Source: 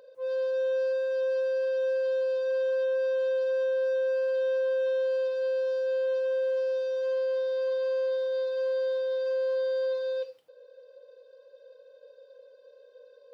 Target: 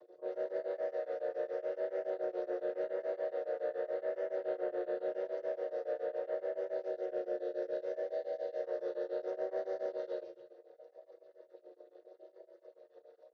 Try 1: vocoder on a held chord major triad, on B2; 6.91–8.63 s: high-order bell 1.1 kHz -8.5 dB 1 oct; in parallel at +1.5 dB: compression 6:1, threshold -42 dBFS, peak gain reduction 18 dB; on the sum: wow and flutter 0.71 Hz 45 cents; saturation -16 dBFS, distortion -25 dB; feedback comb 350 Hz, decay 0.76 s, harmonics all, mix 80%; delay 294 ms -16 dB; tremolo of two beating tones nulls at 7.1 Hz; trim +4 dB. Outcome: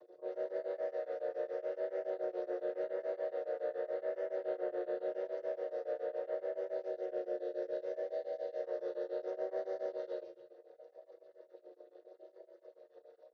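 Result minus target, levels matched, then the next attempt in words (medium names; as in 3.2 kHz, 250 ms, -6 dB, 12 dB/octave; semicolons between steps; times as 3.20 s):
compression: peak gain reduction +6.5 dB
vocoder on a held chord major triad, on B2; 6.91–8.63 s: high-order bell 1.1 kHz -8.5 dB 1 oct; in parallel at +1.5 dB: compression 6:1, threshold -34 dBFS, peak gain reduction 11.5 dB; on the sum: wow and flutter 0.71 Hz 45 cents; saturation -16 dBFS, distortion -22 dB; feedback comb 350 Hz, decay 0.76 s, harmonics all, mix 80%; delay 294 ms -16 dB; tremolo of two beating tones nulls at 7.1 Hz; trim +4 dB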